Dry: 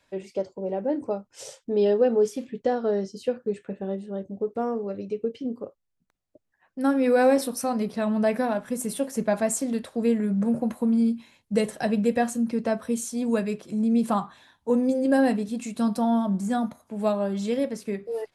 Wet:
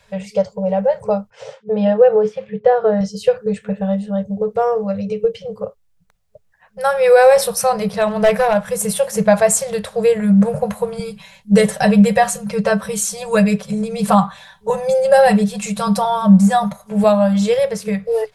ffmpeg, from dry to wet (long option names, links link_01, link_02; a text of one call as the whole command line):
ffmpeg -i in.wav -filter_complex "[0:a]asettb=1/sr,asplit=3[link_01][link_02][link_03];[link_01]atrim=end=1.304[link_04];[link_02]atrim=start=1.3:end=3.01,asetpts=PTS-STARTPTS,afade=type=in:duration=0.004:curve=qsin,afade=type=out:start_time=1.706:duration=0.004:curve=qsin,highpass=100,lowpass=2100[link_05];[link_03]atrim=start=3.006[link_06];[link_04][link_05]acrossfade=duration=0.004:curve1=hsin:curve2=qsin[link_07];[link_07][link_06]acrossfade=duration=0.004:curve1=qsin:curve2=hsin,asettb=1/sr,asplit=3[link_08][link_09][link_10];[link_08]atrim=end=7.994[link_11];[link_09]atrim=start=7.99:end=8.57,asetpts=PTS-STARTPTS,afade=type=in:duration=0.004:curve=qsin,afade=type=out:start_time=0.576:duration=0.004:curve=qsin,volume=19dB,asoftclip=hard,volume=-19dB[link_12];[link_10]atrim=start=8.566[link_13];[link_11][link_12]acrossfade=duration=0.004:curve1=hsin:curve2=qsin[link_14];[link_14][link_13]acrossfade=duration=0.004:curve1=qsin:curve2=hsin,asettb=1/sr,asplit=3[link_15][link_16][link_17];[link_15]atrim=end=10.994[link_18];[link_16]atrim=start=10.99:end=17.04,asetpts=PTS-STARTPTS,afade=type=in:duration=0.004:curve=qsin,afade=type=out:start_time=6.046:duration=0.004:curve=qsin,aecho=1:1:5.2:0.65,atrim=end_sample=266805[link_19];[link_17]atrim=start=17.036[link_20];[link_18][link_19]acrossfade=duration=0.004:curve1=hsin:curve2=qsin[link_21];[link_21][link_20]acrossfade=duration=0.004:curve1=qsin:curve2=hsin,lowshelf=frequency=110:gain=8,afftfilt=real='re*(1-between(b*sr/4096,210,420))':imag='im*(1-between(b*sr/4096,210,420))':win_size=4096:overlap=0.75,alimiter=level_in=13dB:limit=-1dB:release=50:level=0:latency=1,volume=-1dB" out.wav